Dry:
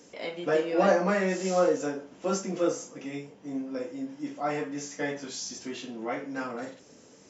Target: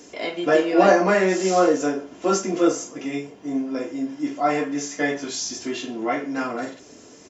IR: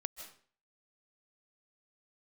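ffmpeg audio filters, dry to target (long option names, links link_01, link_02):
-af "aecho=1:1:2.9:0.42,volume=7.5dB"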